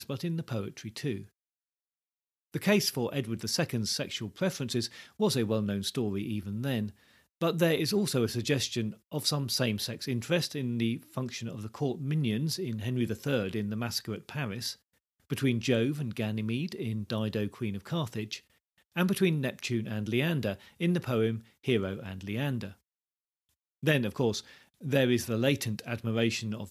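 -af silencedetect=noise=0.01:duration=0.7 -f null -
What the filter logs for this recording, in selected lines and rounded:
silence_start: 1.23
silence_end: 2.54 | silence_duration: 1.31
silence_start: 22.71
silence_end: 23.83 | silence_duration: 1.12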